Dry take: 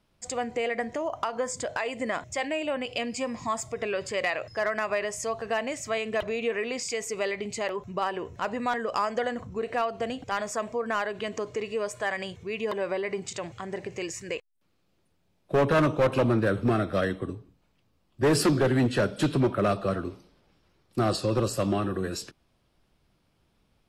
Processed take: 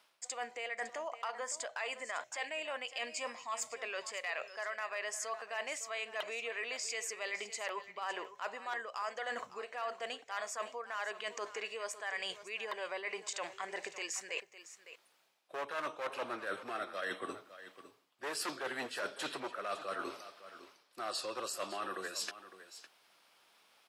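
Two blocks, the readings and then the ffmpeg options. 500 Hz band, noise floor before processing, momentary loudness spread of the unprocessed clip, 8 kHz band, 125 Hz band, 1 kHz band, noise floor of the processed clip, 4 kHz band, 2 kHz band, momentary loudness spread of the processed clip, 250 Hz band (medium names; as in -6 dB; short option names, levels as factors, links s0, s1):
-15.0 dB, -70 dBFS, 11 LU, -4.5 dB, under -35 dB, -9.5 dB, -70 dBFS, -5.0 dB, -6.5 dB, 8 LU, -23.0 dB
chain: -af "highpass=850,areverse,acompressor=threshold=0.00447:ratio=6,areverse,aecho=1:1:557:0.2,volume=2.82"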